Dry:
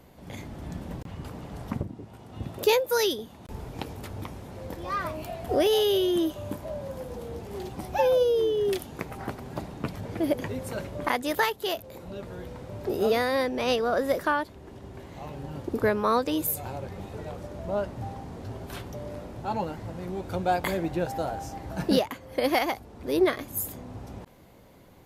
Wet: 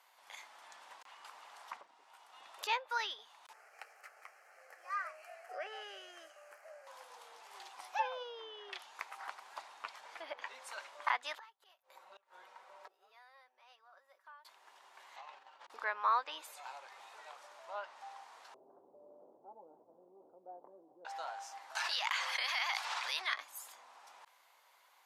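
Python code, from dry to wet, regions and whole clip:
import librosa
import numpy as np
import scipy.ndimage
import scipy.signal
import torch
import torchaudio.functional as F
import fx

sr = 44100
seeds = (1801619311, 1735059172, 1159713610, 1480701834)

y = fx.chain(x, sr, fx.median_filter(points=5),
    fx.low_shelf(hz=69.0, db=-11.0),
    fx.fixed_phaser(hz=970.0, stages=6), at=(3.53, 6.87))
y = fx.chain(y, sr, fx.comb(ms=5.3, depth=0.5),
    fx.gate_flip(shuts_db=-26.0, range_db=-24),
    fx.high_shelf(hz=2300.0, db=-10.0), at=(11.38, 14.45))
y = fx.chain(y, sr, fx.lowpass(hz=4700.0, slope=12),
    fx.over_compress(threshold_db=-40.0, ratio=-0.5),
    fx.hum_notches(base_hz=50, count=7), at=(15.16, 15.7))
y = fx.chain(y, sr, fx.cheby2_lowpass(hz=2400.0, order=4, stop_db=80),
    fx.env_flatten(amount_pct=100), at=(18.54, 21.05))
y = fx.chain(y, sr, fx.highpass(hz=76.0, slope=12),
    fx.tone_stack(knobs='10-0-10'),
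    fx.env_flatten(amount_pct=100), at=(21.75, 23.34))
y = fx.env_lowpass_down(y, sr, base_hz=2700.0, full_db=-21.5)
y = scipy.signal.sosfilt(scipy.signal.cheby1(3, 1.0, 950.0, 'highpass', fs=sr, output='sos'), y)
y = fx.high_shelf(y, sr, hz=12000.0, db=-7.0)
y = y * librosa.db_to_amplitude(-3.5)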